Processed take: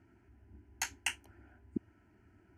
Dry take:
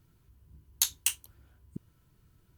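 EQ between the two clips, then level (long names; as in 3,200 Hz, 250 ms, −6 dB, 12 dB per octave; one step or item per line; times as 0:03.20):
high-pass filter 110 Hz 12 dB per octave
Bessel low-pass filter 2,300 Hz, order 2
phaser with its sweep stopped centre 750 Hz, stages 8
+10.0 dB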